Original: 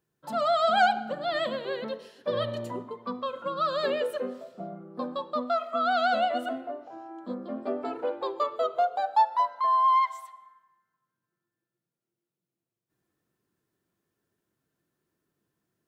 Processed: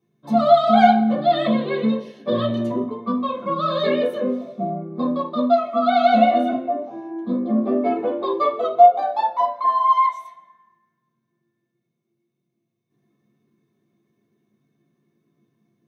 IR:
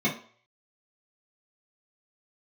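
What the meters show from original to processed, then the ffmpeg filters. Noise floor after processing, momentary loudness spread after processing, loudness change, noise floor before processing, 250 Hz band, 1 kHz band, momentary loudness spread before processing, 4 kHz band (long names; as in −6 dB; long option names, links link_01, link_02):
−76 dBFS, 12 LU, +8.5 dB, below −85 dBFS, +17.0 dB, +7.5 dB, 15 LU, +4.0 dB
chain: -filter_complex "[1:a]atrim=start_sample=2205,atrim=end_sample=3969[link_01];[0:a][link_01]afir=irnorm=-1:irlink=0,volume=-4dB"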